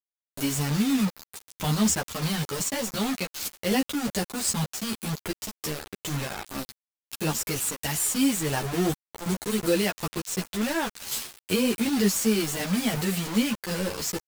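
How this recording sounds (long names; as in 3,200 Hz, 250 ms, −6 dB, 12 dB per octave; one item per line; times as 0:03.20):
tremolo saw down 2.7 Hz, depth 45%
a quantiser's noise floor 6 bits, dither none
a shimmering, thickened sound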